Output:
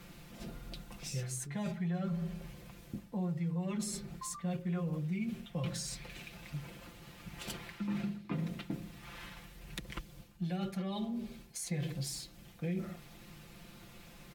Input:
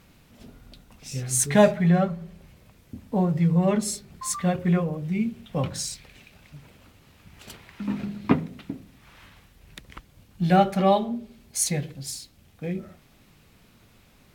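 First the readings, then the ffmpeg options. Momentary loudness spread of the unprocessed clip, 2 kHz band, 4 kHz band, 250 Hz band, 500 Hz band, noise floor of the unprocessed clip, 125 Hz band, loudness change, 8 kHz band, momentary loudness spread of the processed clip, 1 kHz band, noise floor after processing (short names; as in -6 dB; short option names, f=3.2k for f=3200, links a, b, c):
17 LU, -12.0 dB, -8.5 dB, -12.0 dB, -19.0 dB, -57 dBFS, -11.0 dB, -15.0 dB, -14.0 dB, 16 LU, -20.5 dB, -56 dBFS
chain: -filter_complex "[0:a]areverse,acompressor=threshold=-33dB:ratio=10,areverse,aecho=1:1:5.8:0.75,acrossover=split=310|650|2100[a][b][c][d];[a]acompressor=threshold=-35dB:ratio=4[e];[b]acompressor=threshold=-50dB:ratio=4[f];[c]acompressor=threshold=-51dB:ratio=4[g];[d]acompressor=threshold=-42dB:ratio=4[h];[e][f][g][h]amix=inputs=4:normalize=0,volume=1dB"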